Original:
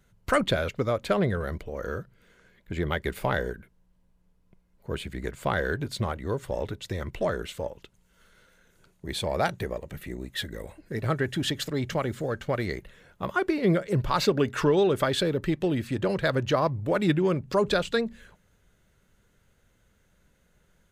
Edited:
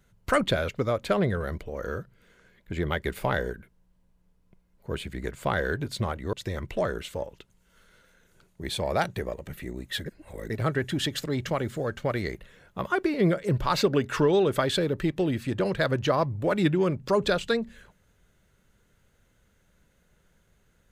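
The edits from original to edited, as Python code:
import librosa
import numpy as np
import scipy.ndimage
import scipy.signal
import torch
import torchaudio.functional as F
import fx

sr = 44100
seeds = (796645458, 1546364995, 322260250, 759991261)

y = fx.edit(x, sr, fx.cut(start_s=6.33, length_s=0.44),
    fx.reverse_span(start_s=10.5, length_s=0.44), tone=tone)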